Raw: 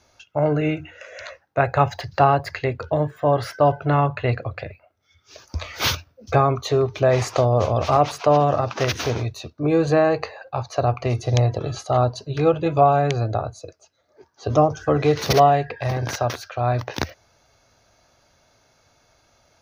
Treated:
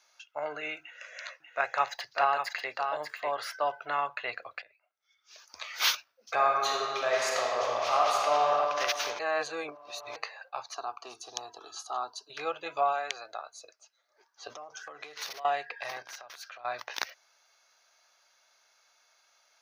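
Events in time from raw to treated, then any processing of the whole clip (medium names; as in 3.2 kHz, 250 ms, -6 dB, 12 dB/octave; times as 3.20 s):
0.81–3.42 s: delay 591 ms -6 dB
4.62–5.74 s: fade in linear, from -15 dB
6.33–8.51 s: reverb throw, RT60 2.5 s, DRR -2 dB
9.19–10.16 s: reverse
10.74–12.30 s: static phaser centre 560 Hz, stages 6
12.92–13.52 s: high-pass 340 Hz -> 1.1 kHz 6 dB/octave
14.53–15.45 s: compression 16:1, threshold -27 dBFS
16.02–16.65 s: compression 4:1, threshold -36 dBFS
whole clip: high-pass 1.1 kHz 12 dB/octave; trim -3.5 dB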